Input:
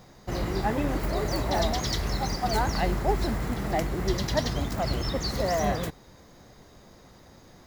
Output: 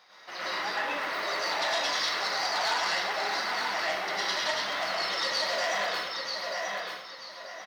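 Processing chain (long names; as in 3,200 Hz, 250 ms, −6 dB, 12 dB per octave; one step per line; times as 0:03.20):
high-pass filter 1,200 Hz 12 dB per octave
in parallel at +1 dB: downward compressor, threshold −34 dBFS, peak gain reduction 7.5 dB
on the sum: gain into a clipping stage and back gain 20 dB
Savitzky-Golay smoothing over 15 samples
on a send: repeating echo 936 ms, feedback 30%, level −5 dB
on the sum: dense smooth reverb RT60 0.7 s, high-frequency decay 0.75×, pre-delay 90 ms, DRR −7.5 dB
saturating transformer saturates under 2,600 Hz
level −5 dB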